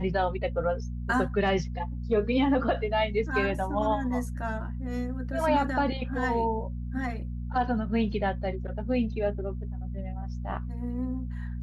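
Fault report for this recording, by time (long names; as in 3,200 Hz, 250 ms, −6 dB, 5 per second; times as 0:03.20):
mains hum 60 Hz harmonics 4 −34 dBFS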